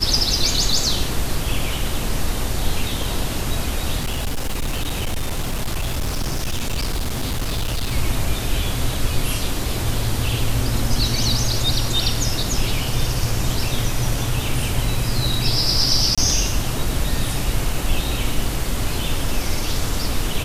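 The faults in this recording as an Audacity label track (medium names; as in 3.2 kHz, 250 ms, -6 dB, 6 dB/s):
4.000000	7.930000	clipped -18.5 dBFS
16.150000	16.180000	dropout 26 ms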